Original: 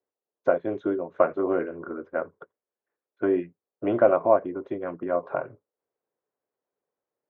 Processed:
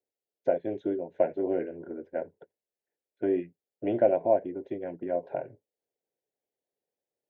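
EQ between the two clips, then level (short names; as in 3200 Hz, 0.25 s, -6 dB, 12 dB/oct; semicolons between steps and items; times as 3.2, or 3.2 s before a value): Butterworth band-stop 1200 Hz, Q 1.4; -3.5 dB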